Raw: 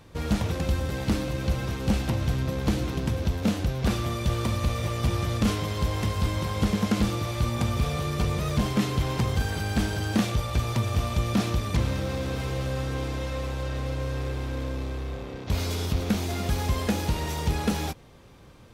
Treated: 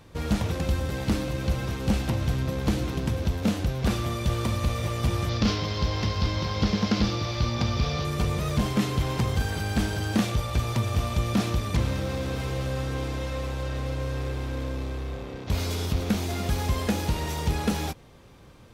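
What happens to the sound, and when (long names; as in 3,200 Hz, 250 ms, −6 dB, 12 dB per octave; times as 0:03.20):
0:05.29–0:08.05: high shelf with overshoot 6,800 Hz −11 dB, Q 3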